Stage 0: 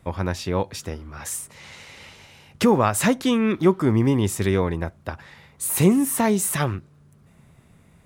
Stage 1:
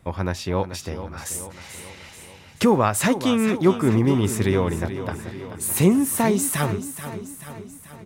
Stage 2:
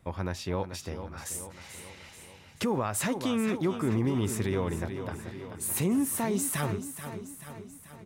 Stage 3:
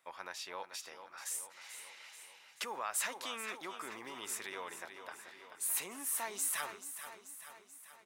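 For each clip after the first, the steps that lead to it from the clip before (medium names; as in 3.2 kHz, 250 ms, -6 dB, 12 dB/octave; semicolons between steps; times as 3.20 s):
feedback delay 434 ms, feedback 57%, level -11.5 dB
peak limiter -13 dBFS, peak gain reduction 7 dB; trim -6.5 dB
high-pass 980 Hz 12 dB/octave; trim -3 dB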